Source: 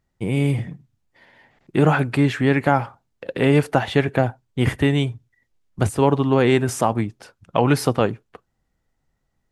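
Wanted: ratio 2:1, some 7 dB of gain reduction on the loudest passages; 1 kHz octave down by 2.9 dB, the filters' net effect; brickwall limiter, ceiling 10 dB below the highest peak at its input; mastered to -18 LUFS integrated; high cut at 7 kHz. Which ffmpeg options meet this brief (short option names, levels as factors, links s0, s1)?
-af "lowpass=7000,equalizer=f=1000:t=o:g=-4,acompressor=threshold=0.0562:ratio=2,volume=4.47,alimiter=limit=0.501:level=0:latency=1"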